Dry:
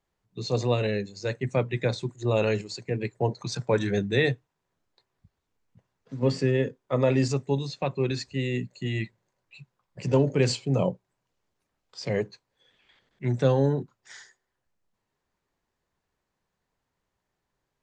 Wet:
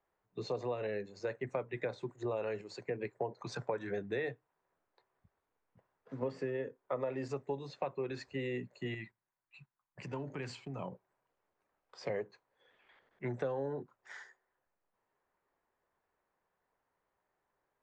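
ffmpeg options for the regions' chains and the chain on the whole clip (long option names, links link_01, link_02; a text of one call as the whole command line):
ffmpeg -i in.wav -filter_complex "[0:a]asettb=1/sr,asplit=3[link_01][link_02][link_03];[link_01]atrim=end=8.944[link_04];[link_02]atrim=start=8.94:end=10.92,asetpts=PTS-STARTPTS,afade=type=in:duration=0.004:curve=qsin,afade=type=out:start_time=1.976:duration=0.004:curve=qsin,agate=range=-10dB:threshold=-52dB:ratio=16:release=100:detection=peak,equalizer=frequency=510:width_type=o:width=0.99:gain=-13.5,acompressor=threshold=-33dB:ratio=3:attack=3.2:release=140:knee=1:detection=peak[link_05];[link_03]atrim=start=10.916[link_06];[link_04][link_05]acrossfade=duration=0.004:curve1=hsin:curve2=qsin[link_07];[link_07][link_06]acrossfade=duration=0.004:curve1=qsin:curve2=hsin,acrossover=split=360 2100:gain=0.224 1 0.141[link_08][link_09][link_10];[link_08][link_09][link_10]amix=inputs=3:normalize=0,acompressor=threshold=-36dB:ratio=6,volume=2dB" out.wav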